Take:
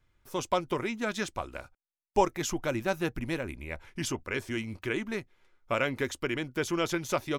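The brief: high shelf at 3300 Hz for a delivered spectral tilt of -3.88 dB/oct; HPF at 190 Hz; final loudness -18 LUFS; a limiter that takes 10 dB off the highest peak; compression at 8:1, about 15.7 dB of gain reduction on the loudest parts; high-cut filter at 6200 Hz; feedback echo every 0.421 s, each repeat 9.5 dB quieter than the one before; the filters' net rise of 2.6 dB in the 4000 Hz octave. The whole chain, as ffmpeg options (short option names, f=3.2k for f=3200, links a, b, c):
-af "highpass=190,lowpass=6.2k,highshelf=f=3.3k:g=-7,equalizer=f=4k:t=o:g=9,acompressor=threshold=-35dB:ratio=8,alimiter=level_in=7dB:limit=-24dB:level=0:latency=1,volume=-7dB,aecho=1:1:421|842|1263|1684:0.335|0.111|0.0365|0.012,volume=25dB"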